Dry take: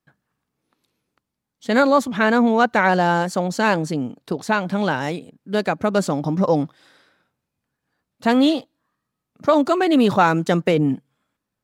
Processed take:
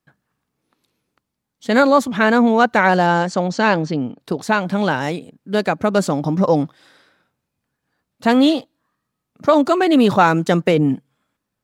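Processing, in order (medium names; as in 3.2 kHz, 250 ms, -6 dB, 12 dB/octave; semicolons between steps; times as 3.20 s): 3.06–4.18 s: low-pass 8.3 kHz -> 4.6 kHz 24 dB/octave; trim +2.5 dB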